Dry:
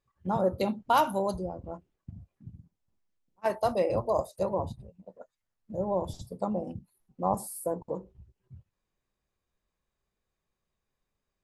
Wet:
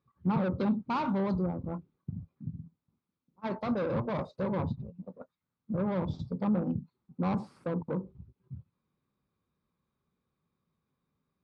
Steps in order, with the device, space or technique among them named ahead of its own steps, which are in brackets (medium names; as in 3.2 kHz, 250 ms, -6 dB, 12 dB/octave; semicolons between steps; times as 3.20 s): guitar amplifier (valve stage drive 31 dB, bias 0.3; tone controls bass +5 dB, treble +1 dB; cabinet simulation 100–3800 Hz, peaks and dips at 160 Hz +6 dB, 250 Hz +6 dB, 670 Hz -7 dB, 1.2 kHz +4 dB, 1.8 kHz -8 dB, 2.9 kHz -9 dB); trim +3 dB